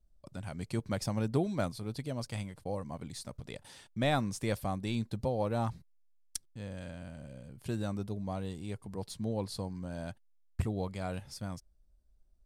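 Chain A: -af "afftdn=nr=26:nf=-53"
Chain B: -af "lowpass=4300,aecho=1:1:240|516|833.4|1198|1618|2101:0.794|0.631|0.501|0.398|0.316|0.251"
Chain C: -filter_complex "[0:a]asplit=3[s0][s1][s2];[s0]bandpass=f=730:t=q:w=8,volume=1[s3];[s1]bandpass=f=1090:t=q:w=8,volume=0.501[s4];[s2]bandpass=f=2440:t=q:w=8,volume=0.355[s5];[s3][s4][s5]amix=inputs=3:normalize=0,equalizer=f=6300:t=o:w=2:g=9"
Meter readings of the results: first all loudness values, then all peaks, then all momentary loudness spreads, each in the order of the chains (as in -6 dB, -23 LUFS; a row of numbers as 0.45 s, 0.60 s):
-37.0 LUFS, -33.5 LUFS, -47.5 LUFS; -13.0 dBFS, -12.5 dBFS, -24.5 dBFS; 14 LU, 10 LU, 19 LU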